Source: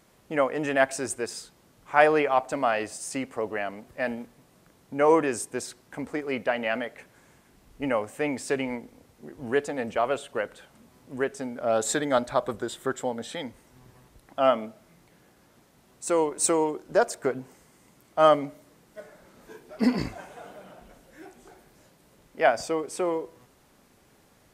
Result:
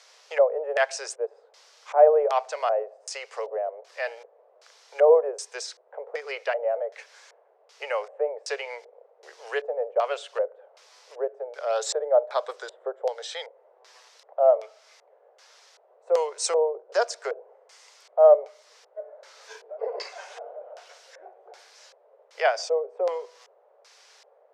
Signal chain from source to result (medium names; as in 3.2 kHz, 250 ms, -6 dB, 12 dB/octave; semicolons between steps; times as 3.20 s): LFO low-pass square 1.3 Hz 590–5400 Hz; steep high-pass 430 Hz 72 dB/octave; tape noise reduction on one side only encoder only; trim -1.5 dB